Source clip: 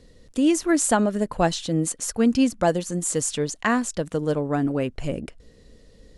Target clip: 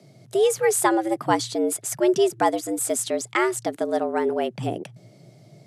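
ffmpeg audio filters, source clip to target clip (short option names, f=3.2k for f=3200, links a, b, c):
-af "afreqshift=100,asetrate=48000,aresample=44100"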